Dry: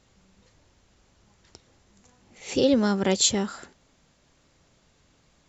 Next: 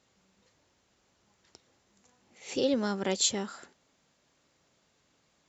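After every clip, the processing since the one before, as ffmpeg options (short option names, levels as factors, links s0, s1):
-af "highpass=f=230:p=1,volume=0.531"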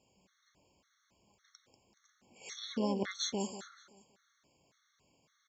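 -filter_complex "[0:a]alimiter=limit=0.0944:level=0:latency=1:release=192,asplit=2[s0][s1];[s1]aecho=0:1:190|380|570|760:0.251|0.1|0.0402|0.0161[s2];[s0][s2]amix=inputs=2:normalize=0,afftfilt=real='re*gt(sin(2*PI*1.8*pts/sr)*(1-2*mod(floor(b*sr/1024/1100),2)),0)':imag='im*gt(sin(2*PI*1.8*pts/sr)*(1-2*mod(floor(b*sr/1024/1100),2)),0)':win_size=1024:overlap=0.75"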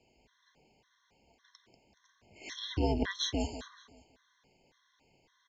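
-af "highpass=230,lowpass=4400,afreqshift=-140,asuperstop=centerf=1300:order=4:qfactor=5.2,volume=1.88"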